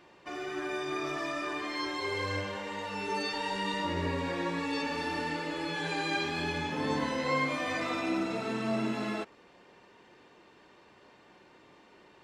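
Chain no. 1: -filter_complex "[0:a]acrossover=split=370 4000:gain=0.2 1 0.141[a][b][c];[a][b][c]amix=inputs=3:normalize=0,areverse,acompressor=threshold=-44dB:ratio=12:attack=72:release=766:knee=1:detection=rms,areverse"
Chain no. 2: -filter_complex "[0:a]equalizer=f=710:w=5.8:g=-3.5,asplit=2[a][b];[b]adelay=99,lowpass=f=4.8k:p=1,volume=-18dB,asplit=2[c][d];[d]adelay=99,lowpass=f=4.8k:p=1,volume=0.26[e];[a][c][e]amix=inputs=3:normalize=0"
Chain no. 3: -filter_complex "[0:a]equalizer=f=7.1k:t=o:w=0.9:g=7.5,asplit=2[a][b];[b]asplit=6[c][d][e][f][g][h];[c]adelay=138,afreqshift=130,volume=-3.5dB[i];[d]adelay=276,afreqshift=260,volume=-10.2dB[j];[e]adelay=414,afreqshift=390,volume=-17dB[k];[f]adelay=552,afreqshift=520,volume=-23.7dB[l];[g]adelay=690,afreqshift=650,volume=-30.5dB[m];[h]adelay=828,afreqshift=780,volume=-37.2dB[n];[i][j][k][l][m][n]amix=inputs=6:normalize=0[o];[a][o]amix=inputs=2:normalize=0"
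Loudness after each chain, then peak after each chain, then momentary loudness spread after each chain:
-46.5, -33.0, -30.5 LUFS; -32.0, -17.5, -15.5 dBFS; 14, 5, 6 LU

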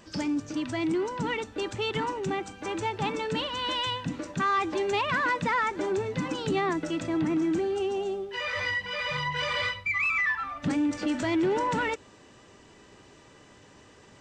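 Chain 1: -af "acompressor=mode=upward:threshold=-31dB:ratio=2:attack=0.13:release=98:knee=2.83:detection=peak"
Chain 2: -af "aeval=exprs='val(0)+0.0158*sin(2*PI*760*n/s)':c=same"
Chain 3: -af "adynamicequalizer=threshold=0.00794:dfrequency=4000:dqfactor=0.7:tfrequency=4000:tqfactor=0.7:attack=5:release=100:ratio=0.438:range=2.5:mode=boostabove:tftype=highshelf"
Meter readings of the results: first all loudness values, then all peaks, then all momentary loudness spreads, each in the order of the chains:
-28.5, -28.5, -28.5 LUFS; -16.0, -16.0, -16.0 dBFS; 20, 14, 6 LU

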